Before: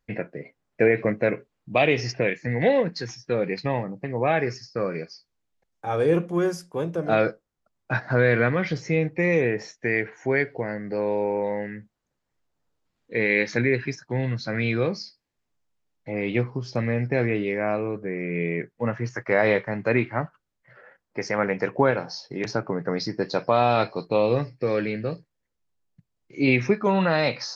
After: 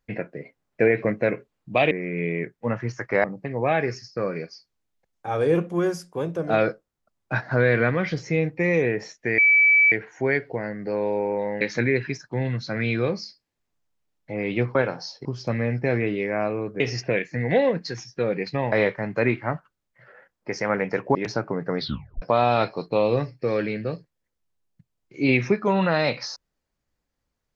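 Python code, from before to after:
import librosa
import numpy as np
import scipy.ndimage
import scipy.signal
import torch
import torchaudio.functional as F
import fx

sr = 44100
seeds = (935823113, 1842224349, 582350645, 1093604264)

y = fx.edit(x, sr, fx.swap(start_s=1.91, length_s=1.92, other_s=18.08, other_length_s=1.33),
    fx.insert_tone(at_s=9.97, length_s=0.54, hz=2300.0, db=-13.0),
    fx.cut(start_s=11.66, length_s=1.73),
    fx.move(start_s=21.84, length_s=0.5, to_s=16.53),
    fx.tape_stop(start_s=22.97, length_s=0.44), tone=tone)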